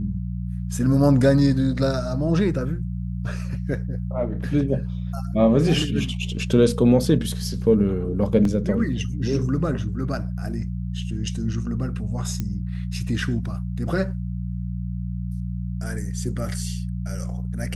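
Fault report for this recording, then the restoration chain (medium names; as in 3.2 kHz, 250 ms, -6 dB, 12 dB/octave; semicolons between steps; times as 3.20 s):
hum 60 Hz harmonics 3 -28 dBFS
8.45 s: dropout 2.6 ms
12.40 s: pop -14 dBFS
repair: de-click; de-hum 60 Hz, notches 3; interpolate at 8.45 s, 2.6 ms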